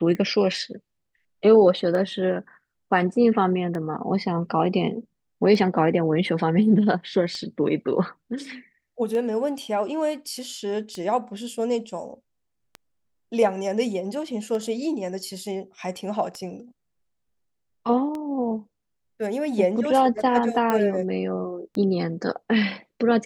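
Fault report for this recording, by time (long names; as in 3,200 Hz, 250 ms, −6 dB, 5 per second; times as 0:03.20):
scratch tick 33 1/3 rpm −20 dBFS
0:20.70: click −10 dBFS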